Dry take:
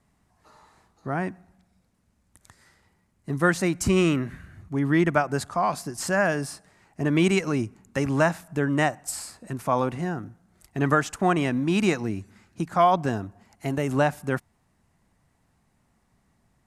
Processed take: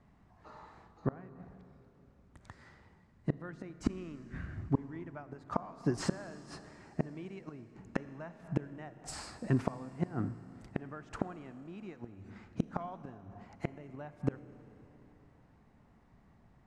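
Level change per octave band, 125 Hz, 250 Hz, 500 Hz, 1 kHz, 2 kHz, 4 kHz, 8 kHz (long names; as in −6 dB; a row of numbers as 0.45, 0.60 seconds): −10.5, −13.0, −16.5, −19.0, −21.0, −16.5, −17.0 decibels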